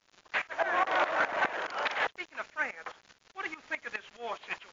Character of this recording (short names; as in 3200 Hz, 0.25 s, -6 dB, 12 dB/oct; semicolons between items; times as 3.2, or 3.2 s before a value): a quantiser's noise floor 8-bit, dither none; tremolo saw up 4.8 Hz, depth 85%; MP3